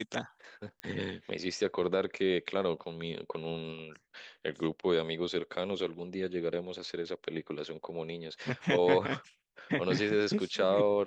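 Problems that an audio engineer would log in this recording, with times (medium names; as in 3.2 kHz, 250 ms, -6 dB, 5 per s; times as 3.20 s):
0.80 s: pop -25 dBFS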